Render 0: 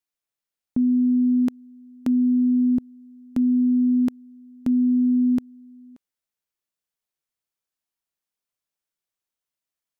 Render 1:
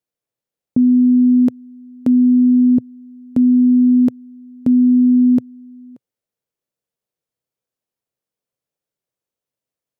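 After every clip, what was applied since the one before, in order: graphic EQ 125/250/500 Hz +12/+4/+12 dB; gain -1.5 dB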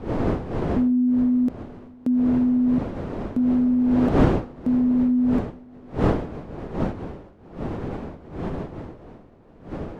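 wind noise 400 Hz -20 dBFS; gain -8 dB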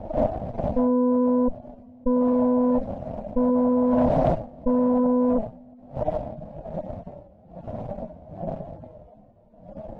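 median-filter separation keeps harmonic; added harmonics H 6 -8 dB, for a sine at -11.5 dBFS; EQ curve 220 Hz 0 dB, 400 Hz -13 dB, 620 Hz +10 dB, 1200 Hz -13 dB, 3500 Hz -10 dB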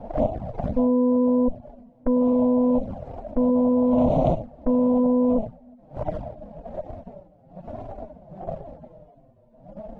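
envelope flanger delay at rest 8.7 ms, full sweep at -19.5 dBFS; gain +1.5 dB

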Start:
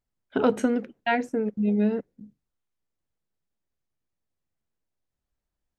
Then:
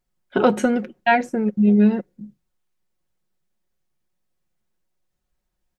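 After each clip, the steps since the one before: comb 5.5 ms, depth 56%; gain +5.5 dB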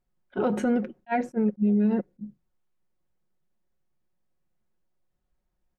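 high shelf 2200 Hz -11 dB; limiter -16.5 dBFS, peak gain reduction 11 dB; attack slew limiter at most 590 dB/s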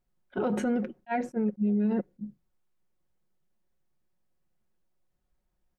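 limiter -20.5 dBFS, peak gain reduction 4 dB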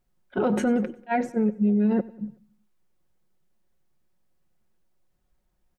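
feedback echo 94 ms, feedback 51%, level -21 dB; gain +5 dB

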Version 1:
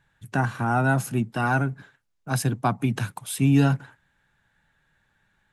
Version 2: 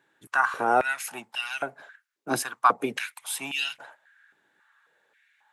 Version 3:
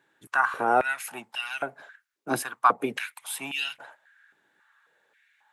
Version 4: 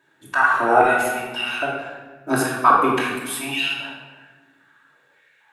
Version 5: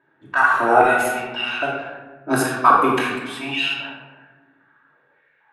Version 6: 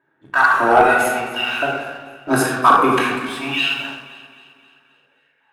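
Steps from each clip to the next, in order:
stepped high-pass 3.7 Hz 340–2900 Hz
dynamic EQ 5900 Hz, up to -6 dB, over -48 dBFS, Q 1.1
shoebox room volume 1000 m³, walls mixed, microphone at 2.8 m; gain +2 dB
low-pass opened by the level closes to 1600 Hz, open at -16.5 dBFS; gain +1 dB
sample leveller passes 1; echo with dull and thin repeats by turns 0.132 s, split 1100 Hz, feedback 71%, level -14 dB; gain -1 dB

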